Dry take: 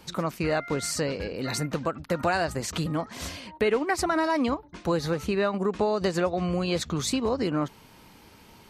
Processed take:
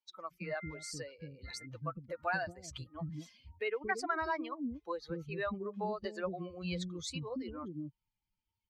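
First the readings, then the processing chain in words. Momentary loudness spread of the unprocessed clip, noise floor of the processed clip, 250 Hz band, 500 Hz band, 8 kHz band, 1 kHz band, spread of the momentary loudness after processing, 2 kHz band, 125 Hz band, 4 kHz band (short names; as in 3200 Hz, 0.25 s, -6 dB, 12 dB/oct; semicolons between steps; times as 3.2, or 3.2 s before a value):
6 LU, under -85 dBFS, -13.5 dB, -13.5 dB, -14.5 dB, -10.0 dB, 11 LU, -7.5 dB, -12.5 dB, -12.5 dB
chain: per-bin expansion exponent 2; LPF 7100 Hz 12 dB/oct; dynamic EQ 1600 Hz, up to +5 dB, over -45 dBFS, Q 1.3; bands offset in time highs, lows 0.23 s, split 360 Hz; gain -7.5 dB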